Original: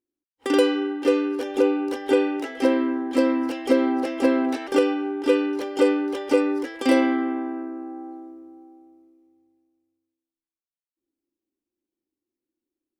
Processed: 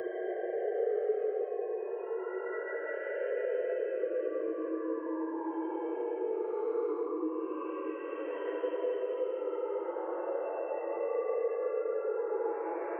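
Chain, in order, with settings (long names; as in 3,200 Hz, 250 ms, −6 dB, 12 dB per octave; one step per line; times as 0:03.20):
three sine waves on the formant tracks
reverb reduction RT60 1.3 s
downward compressor 4 to 1, threshold −34 dBFS, peak gain reduction 19.5 dB
gate on every frequency bin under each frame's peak −20 dB strong
rectangular room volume 870 cubic metres, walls mixed, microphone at 4.4 metres
hard clipping −14.5 dBFS, distortion −33 dB
three-way crossover with the lows and the highs turned down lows −15 dB, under 440 Hz, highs −24 dB, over 2,000 Hz
extreme stretch with random phases 5×, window 0.25 s, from 0:01.97
echo ahead of the sound 149 ms −14.5 dB
multiband upward and downward compressor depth 40%
level −4.5 dB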